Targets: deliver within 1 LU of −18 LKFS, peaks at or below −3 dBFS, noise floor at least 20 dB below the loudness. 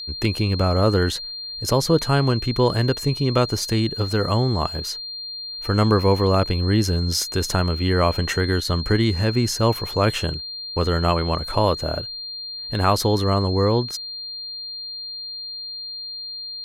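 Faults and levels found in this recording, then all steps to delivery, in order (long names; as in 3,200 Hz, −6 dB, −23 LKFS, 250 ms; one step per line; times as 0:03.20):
interfering tone 4,200 Hz; level of the tone −30 dBFS; integrated loudness −22.0 LKFS; sample peak −5.5 dBFS; target loudness −18.0 LKFS
→ notch filter 4,200 Hz, Q 30
level +4 dB
brickwall limiter −3 dBFS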